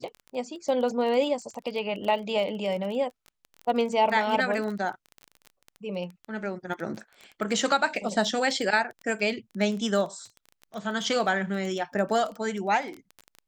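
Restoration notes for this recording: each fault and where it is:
crackle 19 per s -32 dBFS

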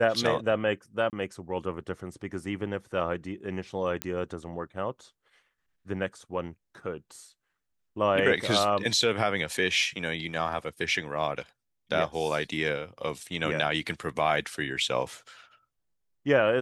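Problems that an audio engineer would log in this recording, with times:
1.10–1.13 s: dropout 28 ms
4.02 s: pop -12 dBFS

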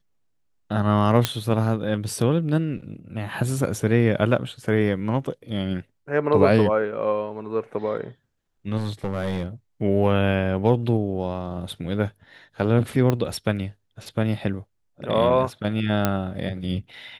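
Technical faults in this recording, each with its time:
1.25 s: pop -4 dBFS
8.77–9.46 s: clipped -20.5 dBFS
13.10 s: pop -9 dBFS
16.05 s: pop -6 dBFS

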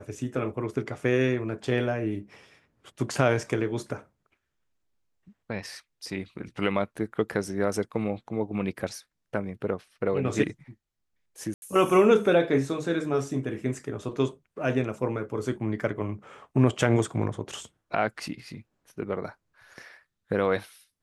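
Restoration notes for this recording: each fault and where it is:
11.54–11.62 s: dropout 81 ms

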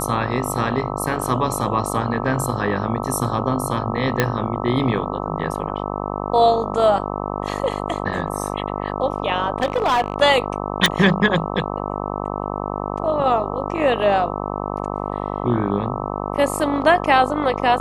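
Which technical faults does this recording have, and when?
buzz 50 Hz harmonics 26 -26 dBFS
4.20 s: pop -2 dBFS
9.60–10.16 s: clipped -14 dBFS
10.86 s: pop

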